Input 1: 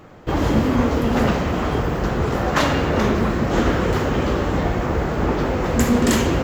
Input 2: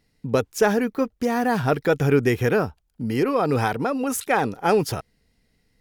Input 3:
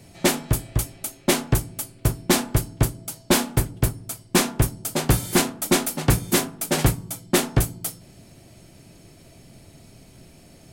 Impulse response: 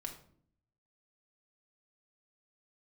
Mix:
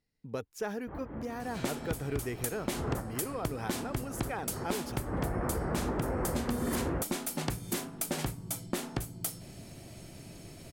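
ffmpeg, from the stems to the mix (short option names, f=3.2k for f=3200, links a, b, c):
-filter_complex "[0:a]lowpass=f=1.9k:w=0.5412,lowpass=f=1.9k:w=1.3066,alimiter=limit=-13.5dB:level=0:latency=1:release=211,adelay=600,volume=-6.5dB[a];[1:a]volume=-16dB,asplit=2[b][c];[2:a]acompressor=threshold=-29dB:ratio=10,adelay=1400,volume=0.5dB[d];[c]apad=whole_len=310412[e];[a][e]sidechaincompress=threshold=-53dB:ratio=10:attack=11:release=216[f];[f][b][d]amix=inputs=3:normalize=0,acompressor=threshold=-28dB:ratio=6"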